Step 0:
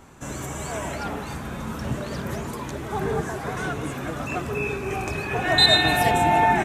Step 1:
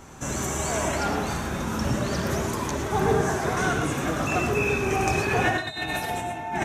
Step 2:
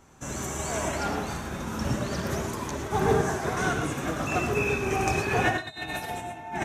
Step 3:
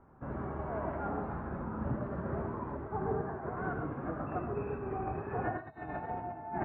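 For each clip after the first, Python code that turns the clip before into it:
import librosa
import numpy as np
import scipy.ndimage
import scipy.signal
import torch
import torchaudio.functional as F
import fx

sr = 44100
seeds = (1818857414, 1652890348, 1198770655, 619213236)

y1 = fx.peak_eq(x, sr, hz=6000.0, db=6.5, octaves=0.44)
y1 = fx.over_compress(y1, sr, threshold_db=-24.0, ratio=-0.5)
y1 = fx.rev_gated(y1, sr, seeds[0], gate_ms=140, shape='rising', drr_db=4.0)
y2 = fx.upward_expand(y1, sr, threshold_db=-40.0, expansion=1.5)
y3 = scipy.signal.sosfilt(scipy.signal.butter(4, 1400.0, 'lowpass', fs=sr, output='sos'), y2)
y3 = fx.rider(y3, sr, range_db=4, speed_s=0.5)
y3 = fx.wow_flutter(y3, sr, seeds[1], rate_hz=2.1, depth_cents=22.0)
y3 = y3 * 10.0 ** (-7.5 / 20.0)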